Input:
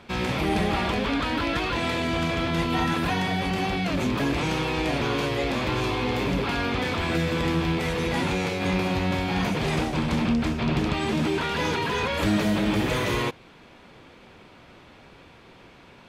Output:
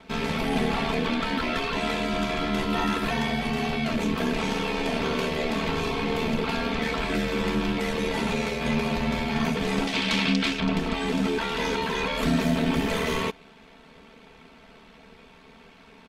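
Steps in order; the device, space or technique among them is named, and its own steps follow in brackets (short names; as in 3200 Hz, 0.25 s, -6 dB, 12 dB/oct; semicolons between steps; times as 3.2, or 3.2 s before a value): 9.87–10.6 weighting filter D; ring-modulated robot voice (ring modulator 38 Hz; comb 4.5 ms, depth 80%)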